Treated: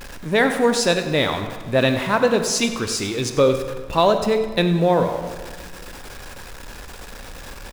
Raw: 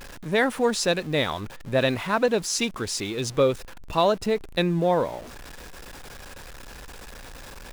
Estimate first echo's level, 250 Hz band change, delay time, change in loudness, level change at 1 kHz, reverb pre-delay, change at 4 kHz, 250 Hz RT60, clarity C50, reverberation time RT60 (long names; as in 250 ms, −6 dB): −14.5 dB, +5.5 dB, 96 ms, +5.0 dB, +5.0 dB, 24 ms, +4.5 dB, 1.8 s, 7.5 dB, 1.7 s